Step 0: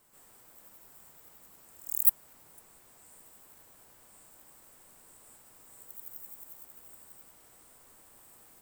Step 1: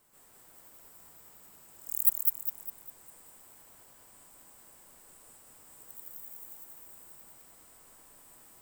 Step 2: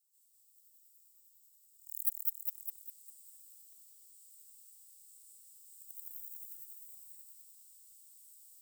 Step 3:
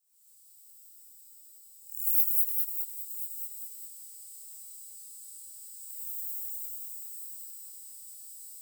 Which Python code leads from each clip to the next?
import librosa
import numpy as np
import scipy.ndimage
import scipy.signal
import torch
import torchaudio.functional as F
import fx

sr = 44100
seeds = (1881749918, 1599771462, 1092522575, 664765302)

y1 = fx.echo_feedback(x, sr, ms=202, feedback_pct=44, wet_db=-3)
y1 = y1 * librosa.db_to_amplitude(-1.5)
y2 = scipy.signal.sosfilt(scipy.signal.cheby2(4, 70, 900.0, 'highpass', fs=sr, output='sos'), y1)
y2 = fx.high_shelf(y2, sr, hz=7600.0, db=4.0)
y2 = fx.rider(y2, sr, range_db=4, speed_s=0.5)
y2 = y2 * librosa.db_to_amplitude(-8.5)
y3 = fx.doubler(y2, sr, ms=25.0, db=-2)
y3 = y3 + 10.0 ** (-13.5 / 20.0) * np.pad(y3, (int(1033 * sr / 1000.0), 0))[:len(y3)]
y3 = fx.rev_gated(y3, sr, seeds[0], gate_ms=140, shape='rising', drr_db=-7.5)